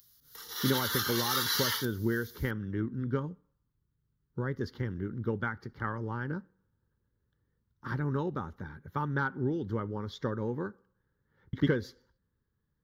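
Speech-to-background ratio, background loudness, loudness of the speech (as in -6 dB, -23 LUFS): -4.0 dB, -30.5 LUFS, -34.5 LUFS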